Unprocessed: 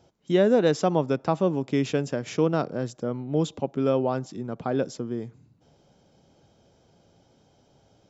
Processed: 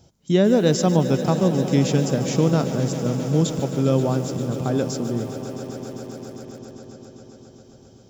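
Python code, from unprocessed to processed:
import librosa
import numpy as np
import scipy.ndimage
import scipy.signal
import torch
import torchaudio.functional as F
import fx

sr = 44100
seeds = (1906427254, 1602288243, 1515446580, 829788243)

y = fx.bass_treble(x, sr, bass_db=10, treble_db=12)
y = fx.echo_swell(y, sr, ms=133, loudest=5, wet_db=-15.5)
y = fx.echo_crushed(y, sr, ms=149, feedback_pct=35, bits=6, wet_db=-13)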